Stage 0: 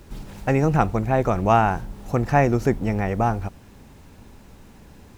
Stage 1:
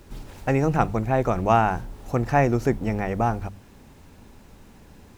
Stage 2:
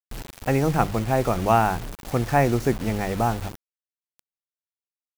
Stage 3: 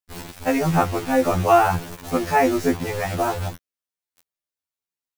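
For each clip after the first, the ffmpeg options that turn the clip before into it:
-af "bandreject=f=50:t=h:w=6,bandreject=f=100:t=h:w=6,bandreject=f=150:t=h:w=6,bandreject=f=200:t=h:w=6,volume=0.841"
-af "acrusher=bits=5:mix=0:aa=0.000001"
-af "afftfilt=real='re*2*eq(mod(b,4),0)':imag='im*2*eq(mod(b,4),0)':win_size=2048:overlap=0.75,volume=1.88"

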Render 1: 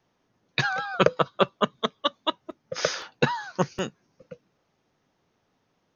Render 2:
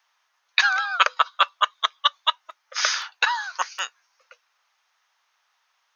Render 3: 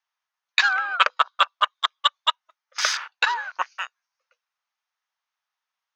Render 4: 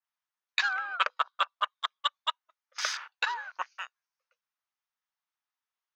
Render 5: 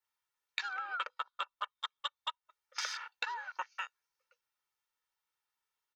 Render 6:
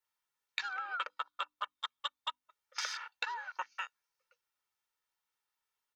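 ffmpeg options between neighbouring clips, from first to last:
-af "highpass=f=1000:w=0.5412,highpass=f=1000:w=1.3066,volume=2.37"
-af "afwtdn=0.0224"
-af "adynamicequalizer=threshold=0.02:dfrequency=2700:dqfactor=0.7:tfrequency=2700:tqfactor=0.7:attack=5:release=100:ratio=0.375:range=1.5:mode=cutabove:tftype=highshelf,volume=0.376"
-filter_complex "[0:a]aecho=1:1:2.2:0.58,acrossover=split=190[s0][s1];[s1]acompressor=threshold=0.0158:ratio=10[s2];[s0][s2]amix=inputs=2:normalize=0,volume=1.19"
-af "bandreject=f=50:t=h:w=6,bandreject=f=100:t=h:w=6,bandreject=f=150:t=h:w=6,bandreject=f=200:t=h:w=6,bandreject=f=250:t=h:w=6,bandreject=f=300:t=h:w=6"

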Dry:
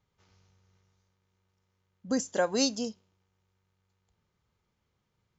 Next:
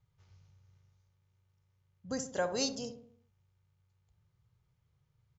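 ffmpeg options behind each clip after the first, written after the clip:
-filter_complex "[0:a]lowshelf=f=170:t=q:w=3:g=8,asplit=2[s0][s1];[s1]adelay=67,lowpass=f=1100:p=1,volume=0.398,asplit=2[s2][s3];[s3]adelay=67,lowpass=f=1100:p=1,volume=0.54,asplit=2[s4][s5];[s5]adelay=67,lowpass=f=1100:p=1,volume=0.54,asplit=2[s6][s7];[s7]adelay=67,lowpass=f=1100:p=1,volume=0.54,asplit=2[s8][s9];[s9]adelay=67,lowpass=f=1100:p=1,volume=0.54,asplit=2[s10][s11];[s11]adelay=67,lowpass=f=1100:p=1,volume=0.54[s12];[s2][s4][s6][s8][s10][s12]amix=inputs=6:normalize=0[s13];[s0][s13]amix=inputs=2:normalize=0,volume=0.562"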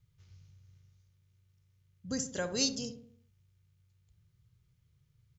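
-af "equalizer=f=800:w=0.83:g=-13,volume=1.78"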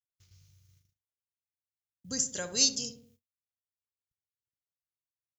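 -af "agate=range=0.00891:threshold=0.001:ratio=16:detection=peak,crystalizer=i=4:c=0,volume=0.631"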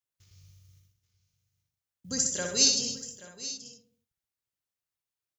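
-af "aecho=1:1:62|127|261|830|887:0.596|0.282|0.141|0.158|0.133,volume=1.26"

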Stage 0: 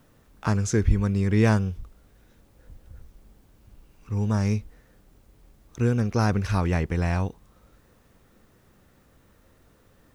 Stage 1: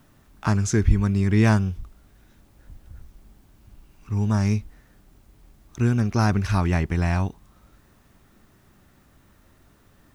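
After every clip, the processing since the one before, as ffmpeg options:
-af "equalizer=f=490:w=7.3:g=-14,volume=1.33"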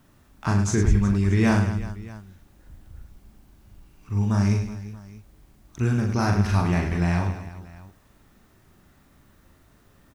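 -af "aecho=1:1:40|104|206.4|370.2|632.4:0.631|0.398|0.251|0.158|0.1,volume=0.75"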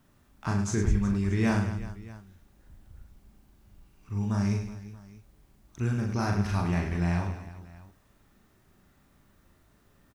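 -filter_complex "[0:a]asplit=2[s0][s1];[s1]adelay=35,volume=0.251[s2];[s0][s2]amix=inputs=2:normalize=0,volume=0.501"

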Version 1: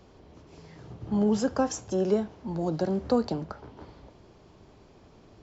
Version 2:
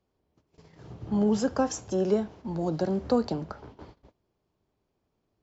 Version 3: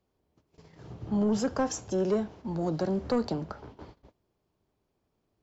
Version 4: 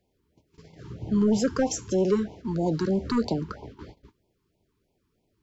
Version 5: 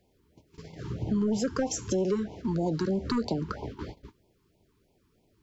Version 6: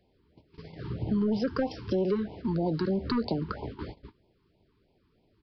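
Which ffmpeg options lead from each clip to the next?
-af "agate=range=0.0708:threshold=0.00447:ratio=16:detection=peak"
-af "asoftclip=type=tanh:threshold=0.106"
-af "afftfilt=real='re*(1-between(b*sr/1024,590*pow(1500/590,0.5+0.5*sin(2*PI*3.1*pts/sr))/1.41,590*pow(1500/590,0.5+0.5*sin(2*PI*3.1*pts/sr))*1.41))':imag='im*(1-between(b*sr/1024,590*pow(1500/590,0.5+0.5*sin(2*PI*3.1*pts/sr))/1.41,590*pow(1500/590,0.5+0.5*sin(2*PI*3.1*pts/sr))*1.41))':win_size=1024:overlap=0.75,volume=1.68"
-af "acompressor=threshold=0.0224:ratio=3,volume=1.78"
-af "aresample=11025,aresample=44100"

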